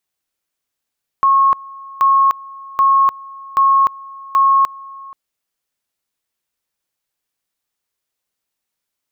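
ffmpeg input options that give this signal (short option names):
-f lavfi -i "aevalsrc='pow(10,(-8.5-22.5*gte(mod(t,0.78),0.3))/20)*sin(2*PI*1090*t)':d=3.9:s=44100"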